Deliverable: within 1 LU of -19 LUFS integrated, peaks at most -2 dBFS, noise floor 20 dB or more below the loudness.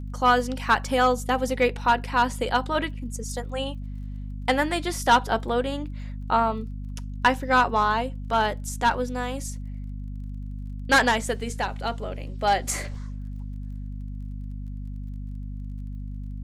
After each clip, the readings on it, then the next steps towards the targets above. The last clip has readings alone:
ticks 27/s; hum 50 Hz; harmonics up to 250 Hz; hum level -31 dBFS; loudness -24.5 LUFS; peak -8.0 dBFS; loudness target -19.0 LUFS
-> de-click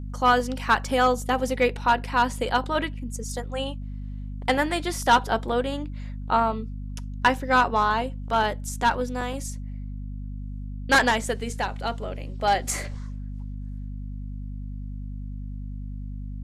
ticks 0/s; hum 50 Hz; harmonics up to 250 Hz; hum level -31 dBFS
-> de-hum 50 Hz, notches 5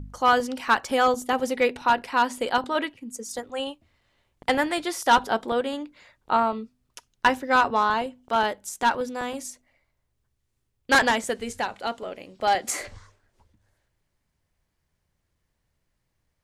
hum none; loudness -24.5 LUFS; peak -8.5 dBFS; loudness target -19.0 LUFS
-> gain +5.5 dB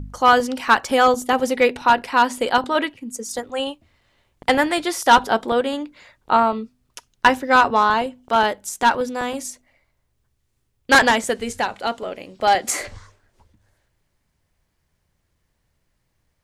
loudness -19.0 LUFS; peak -3.0 dBFS; noise floor -71 dBFS

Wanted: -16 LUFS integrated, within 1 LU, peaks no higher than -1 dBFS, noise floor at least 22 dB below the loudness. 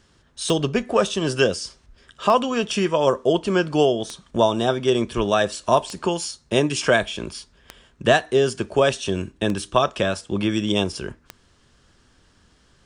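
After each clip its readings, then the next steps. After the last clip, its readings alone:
clicks 7; loudness -21.5 LUFS; peak -4.0 dBFS; loudness target -16.0 LUFS
-> de-click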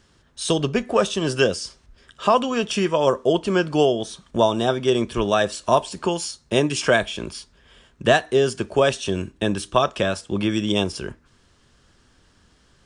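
clicks 0; loudness -21.5 LUFS; peak -4.0 dBFS; loudness target -16.0 LUFS
-> gain +5.5 dB; limiter -1 dBFS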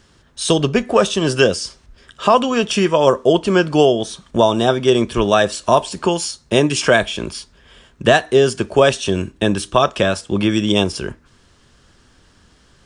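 loudness -16.5 LUFS; peak -1.0 dBFS; noise floor -53 dBFS

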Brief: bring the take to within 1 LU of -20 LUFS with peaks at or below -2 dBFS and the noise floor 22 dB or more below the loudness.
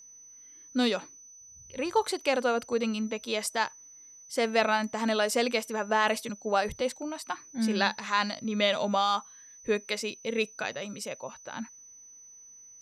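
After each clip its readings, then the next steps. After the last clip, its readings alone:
steady tone 6000 Hz; tone level -49 dBFS; loudness -29.5 LUFS; peak -10.0 dBFS; loudness target -20.0 LUFS
-> notch 6000 Hz, Q 30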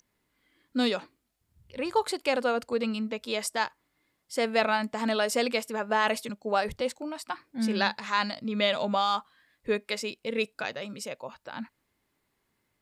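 steady tone none; loudness -29.5 LUFS; peak -10.0 dBFS; loudness target -20.0 LUFS
-> gain +9.5 dB; limiter -2 dBFS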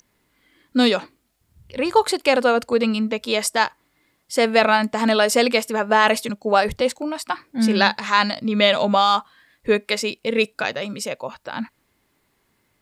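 loudness -20.0 LUFS; peak -2.0 dBFS; noise floor -68 dBFS

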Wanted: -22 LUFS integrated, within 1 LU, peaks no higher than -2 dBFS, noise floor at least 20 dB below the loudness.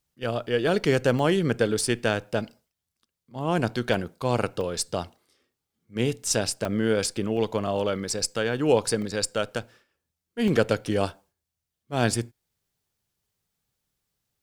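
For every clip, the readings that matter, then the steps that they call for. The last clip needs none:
dropouts 8; longest dropout 1.6 ms; loudness -26.0 LUFS; peak -7.0 dBFS; loudness target -22.0 LUFS
-> interpolate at 1.19/3.94/4.61/6.65/7.37/8.19/9.02/10.48, 1.6 ms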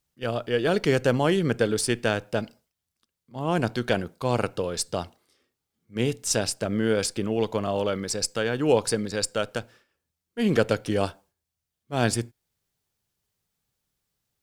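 dropouts 0; loudness -26.0 LUFS; peak -7.0 dBFS; loudness target -22.0 LUFS
-> gain +4 dB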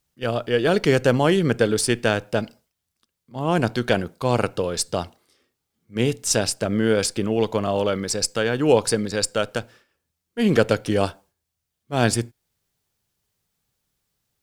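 loudness -22.0 LUFS; peak -3.5 dBFS; noise floor -81 dBFS

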